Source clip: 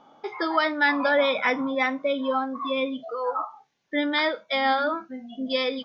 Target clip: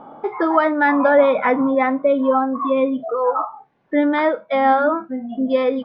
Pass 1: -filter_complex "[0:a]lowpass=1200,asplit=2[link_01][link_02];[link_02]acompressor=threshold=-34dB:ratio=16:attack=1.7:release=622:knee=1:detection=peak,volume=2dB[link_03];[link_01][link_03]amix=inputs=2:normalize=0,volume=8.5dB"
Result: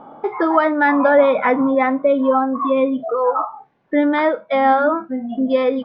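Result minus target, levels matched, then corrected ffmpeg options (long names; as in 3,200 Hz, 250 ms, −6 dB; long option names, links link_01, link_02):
downward compressor: peak gain reduction −7 dB
-filter_complex "[0:a]lowpass=1200,asplit=2[link_01][link_02];[link_02]acompressor=threshold=-41.5dB:ratio=16:attack=1.7:release=622:knee=1:detection=peak,volume=2dB[link_03];[link_01][link_03]amix=inputs=2:normalize=0,volume=8.5dB"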